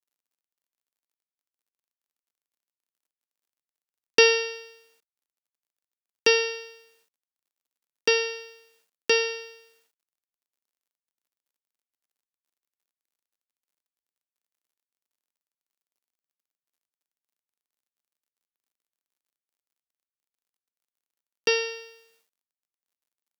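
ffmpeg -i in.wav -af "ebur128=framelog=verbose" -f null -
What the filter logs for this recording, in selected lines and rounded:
Integrated loudness:
  I:         -23.6 LUFS
  Threshold: -36.1 LUFS
Loudness range:
  LRA:         8.2 LU
  Threshold: -49.0 LUFS
  LRA low:   -33.6 LUFS
  LRA high:  -25.5 LUFS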